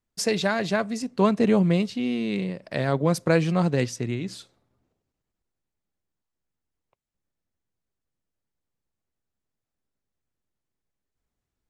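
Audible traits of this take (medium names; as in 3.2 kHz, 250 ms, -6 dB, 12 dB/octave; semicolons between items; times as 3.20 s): noise floor -85 dBFS; spectral tilt -6.0 dB/octave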